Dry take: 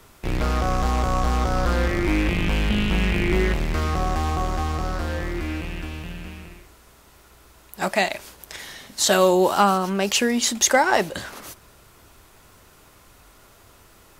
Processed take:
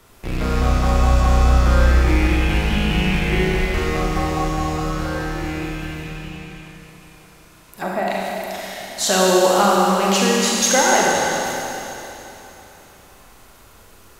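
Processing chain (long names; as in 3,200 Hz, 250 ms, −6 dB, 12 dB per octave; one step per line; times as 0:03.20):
0:06.01–0:08.08: treble cut that deepens with the level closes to 1,100 Hz, closed at −22.5 dBFS
four-comb reverb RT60 3.3 s, combs from 32 ms, DRR −4 dB
level −1.5 dB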